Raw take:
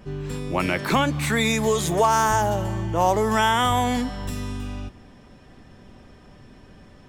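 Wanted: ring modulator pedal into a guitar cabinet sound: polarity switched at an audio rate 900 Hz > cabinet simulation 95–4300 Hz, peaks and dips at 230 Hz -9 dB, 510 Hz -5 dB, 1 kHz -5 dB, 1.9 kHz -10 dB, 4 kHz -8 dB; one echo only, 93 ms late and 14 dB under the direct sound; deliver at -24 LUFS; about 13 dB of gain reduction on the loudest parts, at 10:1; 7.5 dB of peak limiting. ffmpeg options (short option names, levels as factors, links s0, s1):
-af "acompressor=threshold=0.0398:ratio=10,alimiter=level_in=1.12:limit=0.0631:level=0:latency=1,volume=0.891,aecho=1:1:93:0.2,aeval=exprs='val(0)*sgn(sin(2*PI*900*n/s))':c=same,highpass=95,equalizer=f=230:t=q:w=4:g=-9,equalizer=f=510:t=q:w=4:g=-5,equalizer=f=1000:t=q:w=4:g=-5,equalizer=f=1900:t=q:w=4:g=-10,equalizer=f=4000:t=q:w=4:g=-8,lowpass=f=4300:w=0.5412,lowpass=f=4300:w=1.3066,volume=4.47"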